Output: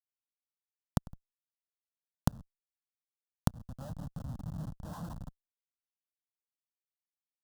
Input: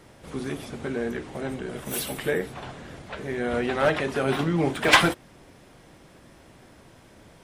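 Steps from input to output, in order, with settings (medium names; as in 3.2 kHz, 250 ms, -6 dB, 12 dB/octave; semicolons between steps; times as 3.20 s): local Wiener filter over 41 samples; on a send: two-band feedback delay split 1.5 kHz, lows 161 ms, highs 113 ms, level -10 dB; on the sum: dynamic bell 890 Hz, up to +5 dB, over -37 dBFS, Q 1.4; low-pass 2.1 kHz 24 dB/octave; Schmitt trigger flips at -22 dBFS; inverted gate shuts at -35 dBFS, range -37 dB; compression 4:1, threshold -49 dBFS, peak gain reduction 12 dB; peaking EQ 170 Hz +14.5 dB 2.7 oct; static phaser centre 930 Hz, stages 4; trim +18 dB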